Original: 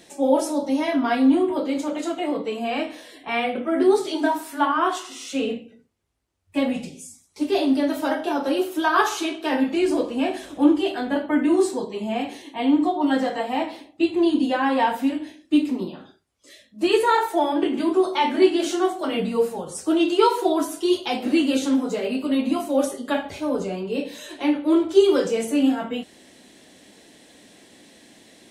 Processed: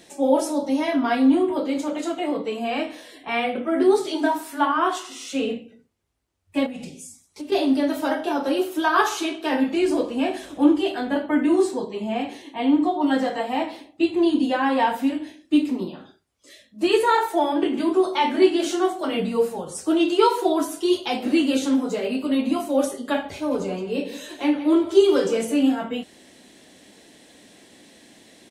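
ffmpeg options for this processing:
-filter_complex "[0:a]asettb=1/sr,asplit=3[a][b][c];[a]atrim=end=6.664[d];[b]atrim=start=6.66:end=7.52,asetpts=PTS-STARTPTS,afade=t=in:d=0.004:c=qsin,afade=t=out:st=0.856:d=0.004:c=qsin,acompressor=threshold=-30dB:ratio=6:attack=3.2:release=140:knee=1:detection=peak[e];[c]atrim=start=7.516[f];[d][e]acrossfade=d=0.004:c1=hsin:c2=qsin[g];[g][f]acrossfade=d=0.004:c1=qsin:c2=hsin,asettb=1/sr,asplit=3[h][i][j];[h]atrim=end=11.614[k];[i]atrim=start=11.61:end=12.92,asetpts=PTS-STARTPTS,afade=t=in:d=0.004:c=qsin,afade=t=out:st=1.306:d=0.004:c=qsin,highshelf=f=5.6k:g=-5[l];[j]atrim=start=12.916[m];[k][l]acrossfade=d=0.004:c1=hsin:c2=qsin[n];[n][m]acrossfade=d=0.004:c1=qsin:c2=hsin,asplit=3[o][p][q];[o]afade=t=out:st=23.5:d=0.02[r];[p]aecho=1:1:169:0.237,afade=t=in:st=23.5:d=0.02,afade=t=out:st=25.54:d=0.02[s];[q]afade=t=in:st=25.54:d=0.02[t];[r][s][t]amix=inputs=3:normalize=0"

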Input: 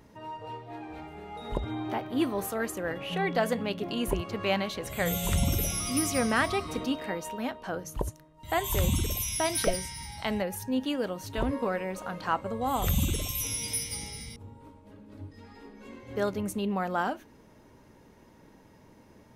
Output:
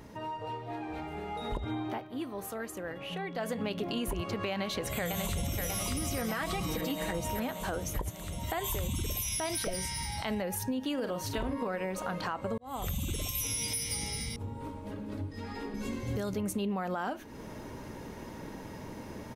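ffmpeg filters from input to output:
-filter_complex "[0:a]asplit=2[a][b];[b]afade=t=in:st=4.51:d=0.01,afade=t=out:st=5.62:d=0.01,aecho=0:1:590|1180|1770|2360|2950|3540|4130|4720|5310:0.707946|0.424767|0.25486|0.152916|0.0917498|0.0550499|0.0330299|0.019818|0.0118908[c];[a][c]amix=inputs=2:normalize=0,asettb=1/sr,asplit=3[d][e][f];[d]atrim=end=6.294[g];[e]atrim=start=6.29:end=7.25,asetpts=PTS-STARTPTS,afade=t=in:d=0.004:c=qsin,afade=t=out:st=0.956:d=0.004:c=qsin,aecho=1:1:6.1:0.65,atrim=end_sample=42336[h];[f]atrim=start=7.246[i];[g][h]acrossfade=d=0.004:c1=hsin:c2=qsin[j];[j][i]acrossfade=d=0.004:c1=qsin:c2=hsin,asplit=3[k][l][m];[k]afade=t=out:st=10.97:d=0.02[n];[l]asplit=2[o][p];[p]adelay=46,volume=-8dB[q];[o][q]amix=inputs=2:normalize=0,afade=t=in:st=10.97:d=0.02,afade=t=out:st=11.67:d=0.02[r];[m]afade=t=in:st=11.67:d=0.02[s];[n][r][s]amix=inputs=3:normalize=0,asettb=1/sr,asplit=3[t][u][v];[t]atrim=end=15.744[w];[u]atrim=start=15.74:end=16.35,asetpts=PTS-STARTPTS,afade=t=in:d=0.004:c=qsin,afade=t=out:st=0.606:d=0.004:c=qsin,bass=f=250:g=10,treble=f=4k:g=11[x];[v]atrim=start=16.346[y];[w][x]acrossfade=d=0.004:c1=hsin:c2=qsin[z];[z][y]acrossfade=d=0.004:c1=qsin:c2=hsin,asplit=4[aa][ab][ac][ad];[aa]atrim=end=2.08,asetpts=PTS-STARTPTS,afade=t=out:st=1.74:d=0.34:silence=0.177828[ae];[ab]atrim=start=2.08:end=3.38,asetpts=PTS-STARTPTS,volume=-15dB[af];[ac]atrim=start=3.38:end=12.58,asetpts=PTS-STARTPTS,afade=t=in:d=0.34:silence=0.177828,afade=t=out:st=9.196:d=0.004:c=hsin[ag];[ad]atrim=start=12.58,asetpts=PTS-STARTPTS,afade=t=in:d=1[ah];[ae][af][ag][ah]concat=n=4:v=0:a=1,dynaudnorm=f=170:g=21:m=7dB,alimiter=limit=-18dB:level=0:latency=1:release=100,acompressor=threshold=-43dB:ratio=2.5,volume=6dB"

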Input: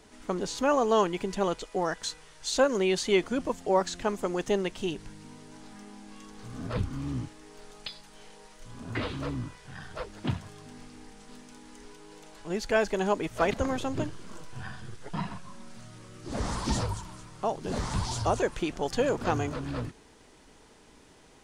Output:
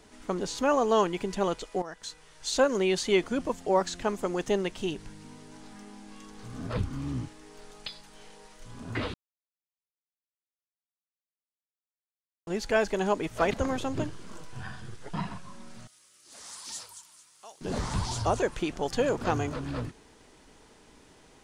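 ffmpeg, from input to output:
-filter_complex "[0:a]asettb=1/sr,asplit=3[a][b][c];[a]atrim=end=15.874[d];[b]atrim=start=15.87:end=17.61,asetpts=PTS-STARTPTS,afade=t=in:d=0.004:c=qsin,afade=t=out:st=1.736:d=0.004:c=qsin,aderivative[e];[c]atrim=start=17.606[f];[d][e]acrossfade=d=0.004:c1=hsin:c2=qsin[g];[g][f]acrossfade=d=0.004:c1=qsin:c2=hsin,asplit=4[h][i][j][k];[h]atrim=end=1.82,asetpts=PTS-STARTPTS,afade=t=out:st=1.816:d=0.004:c=hsin:silence=0.199526[l];[i]atrim=start=1.82:end=9.14,asetpts=PTS-STARTPTS,afade=t=in:d=0.65:silence=0.199526,afade=t=out:st=7.316:d=0.004:c=hsin[m];[j]atrim=start=9.14:end=12.47,asetpts=PTS-STARTPTS,volume=0[n];[k]atrim=start=12.47,asetpts=PTS-STARTPTS,afade=t=in:d=0.004:c=hsin[o];[l][m][n][o]concat=n=4:v=0:a=1"

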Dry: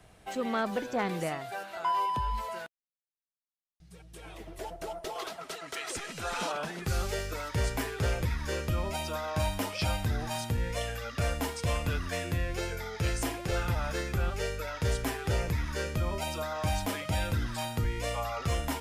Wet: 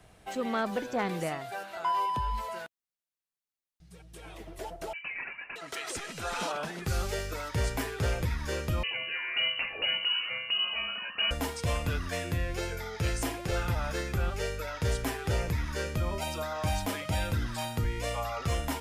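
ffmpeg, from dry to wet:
-filter_complex "[0:a]asettb=1/sr,asplit=3[a][b][c];[a]atrim=end=4.934[d];[b]atrim=start=4.93:end=5.56,asetpts=PTS-STARTPTS,afade=t=in:d=0.004:c=qsin,afade=t=out:st=0.626:d=0.004:c=qsin,lowpass=f=2.6k:t=q:w=0.5098,lowpass=f=2.6k:t=q:w=0.6013,lowpass=f=2.6k:t=q:w=0.9,lowpass=f=2.6k:t=q:w=2.563,afreqshift=-3000[e];[c]atrim=start=5.556[f];[d][e]acrossfade=d=0.004:c1=hsin:c2=qsin[g];[g][f]acrossfade=d=0.004:c1=qsin:c2=hsin,asettb=1/sr,asplit=3[h][i][j];[h]atrim=end=8.834[k];[i]atrim=start=8.83:end=11.31,asetpts=PTS-STARTPTS,afade=t=in:d=0.004:c=qsin,afade=t=out:st=2.476:d=0.004:c=qsin,lowpass=f=2.6k:t=q:w=0.5098,lowpass=f=2.6k:t=q:w=0.6013,lowpass=f=2.6k:t=q:w=0.9,lowpass=f=2.6k:t=q:w=2.563,afreqshift=-3000[l];[j]atrim=start=11.306[m];[k][l]acrossfade=d=0.004:c1=hsin:c2=qsin[n];[n][m]acrossfade=d=0.004:c1=qsin:c2=hsin"

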